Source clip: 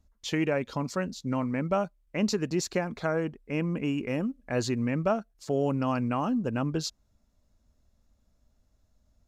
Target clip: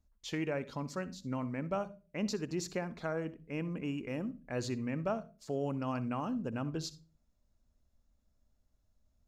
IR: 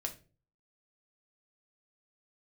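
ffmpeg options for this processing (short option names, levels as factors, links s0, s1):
-filter_complex "[0:a]asplit=2[s0][s1];[1:a]atrim=start_sample=2205,lowshelf=f=180:g=11.5,adelay=62[s2];[s1][s2]afir=irnorm=-1:irlink=0,volume=0.15[s3];[s0][s3]amix=inputs=2:normalize=0,volume=0.398"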